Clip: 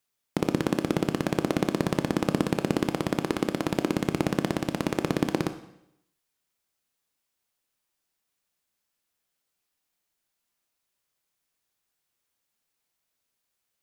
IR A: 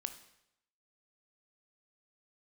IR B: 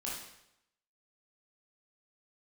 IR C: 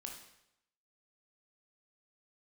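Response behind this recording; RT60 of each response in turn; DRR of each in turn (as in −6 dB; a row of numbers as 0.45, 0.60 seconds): A; 0.80, 0.80, 0.80 seconds; 8.5, −6.0, 1.0 decibels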